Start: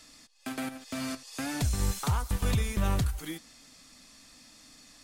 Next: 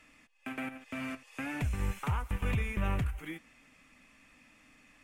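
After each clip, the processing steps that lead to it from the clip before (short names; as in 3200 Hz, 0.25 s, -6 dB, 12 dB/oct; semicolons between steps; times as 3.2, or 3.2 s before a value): resonant high shelf 3300 Hz -9.5 dB, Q 3; notch 690 Hz, Q 20; gain -4 dB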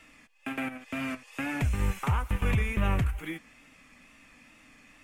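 wow and flutter 42 cents; gain +5 dB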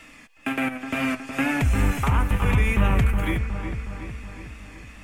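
limiter -22 dBFS, peak gain reduction 5.5 dB; dark delay 0.366 s, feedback 58%, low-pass 2000 Hz, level -7 dB; gain +8.5 dB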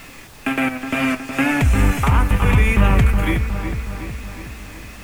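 added noise pink -48 dBFS; gain +5.5 dB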